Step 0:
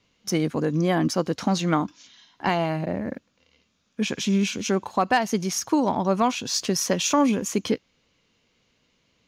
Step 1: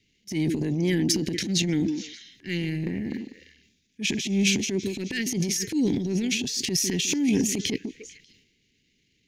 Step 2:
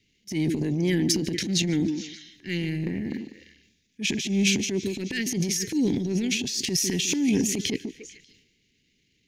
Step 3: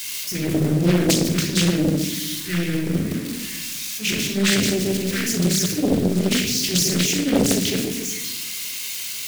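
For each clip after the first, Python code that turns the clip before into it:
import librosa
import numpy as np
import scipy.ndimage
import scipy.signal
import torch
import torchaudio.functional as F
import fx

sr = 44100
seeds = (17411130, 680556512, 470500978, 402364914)

y1 = scipy.signal.sosfilt(scipy.signal.ellip(3, 1.0, 40, [400.0, 1900.0], 'bandstop', fs=sr, output='sos'), x)
y1 = fx.echo_stepped(y1, sr, ms=148, hz=270.0, octaves=1.4, feedback_pct=70, wet_db=-11.5)
y1 = fx.transient(y1, sr, attack_db=-11, sustain_db=10)
y2 = fx.echo_feedback(y1, sr, ms=146, feedback_pct=41, wet_db=-22.0)
y3 = y2 + 0.5 * 10.0 ** (-22.5 / 20.0) * np.diff(np.sign(y2), prepend=np.sign(y2[:1]))
y3 = fx.room_shoebox(y3, sr, seeds[0], volume_m3=3100.0, walls='furnished', distance_m=5.2)
y3 = fx.doppler_dist(y3, sr, depth_ms=0.92)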